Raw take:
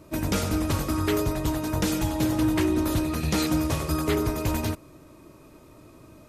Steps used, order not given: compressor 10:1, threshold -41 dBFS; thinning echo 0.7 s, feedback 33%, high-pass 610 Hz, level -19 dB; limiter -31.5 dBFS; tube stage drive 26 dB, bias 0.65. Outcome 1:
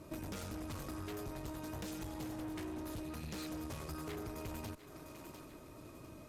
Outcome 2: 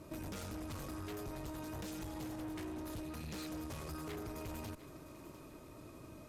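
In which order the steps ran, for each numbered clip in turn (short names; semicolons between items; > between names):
tube stage > thinning echo > compressor > limiter; tube stage > limiter > thinning echo > compressor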